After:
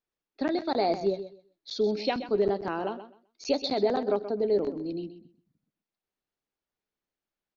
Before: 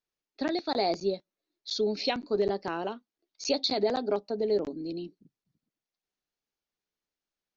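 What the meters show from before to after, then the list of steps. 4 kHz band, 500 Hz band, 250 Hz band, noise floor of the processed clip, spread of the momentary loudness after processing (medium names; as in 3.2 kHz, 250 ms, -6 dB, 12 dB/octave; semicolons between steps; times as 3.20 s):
-4.0 dB, +2.0 dB, +2.0 dB, under -85 dBFS, 12 LU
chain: treble shelf 3.7 kHz -11.5 dB; on a send: feedback delay 128 ms, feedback 20%, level -12 dB; on the sum: trim +2 dB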